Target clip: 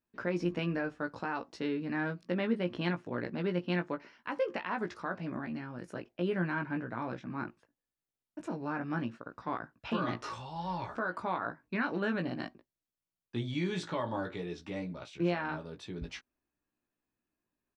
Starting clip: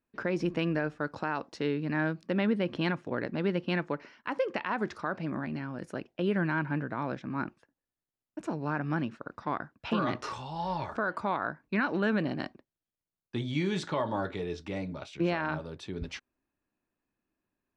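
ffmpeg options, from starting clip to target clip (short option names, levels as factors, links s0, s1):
-filter_complex "[0:a]asplit=2[s0][s1];[s1]adelay=17,volume=0.562[s2];[s0][s2]amix=inputs=2:normalize=0,volume=0.596"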